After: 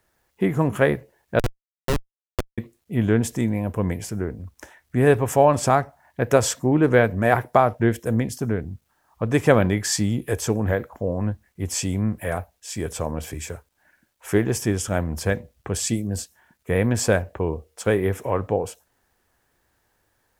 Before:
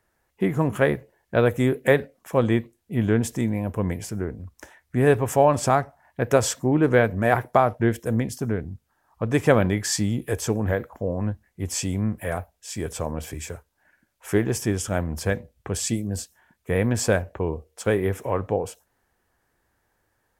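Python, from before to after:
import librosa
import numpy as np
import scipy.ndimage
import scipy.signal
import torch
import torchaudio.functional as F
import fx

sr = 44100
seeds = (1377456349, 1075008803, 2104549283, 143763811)

y = fx.quant_dither(x, sr, seeds[0], bits=12, dither='none')
y = fx.schmitt(y, sr, flips_db=-13.5, at=(1.39, 2.58))
y = y * 10.0 ** (1.5 / 20.0)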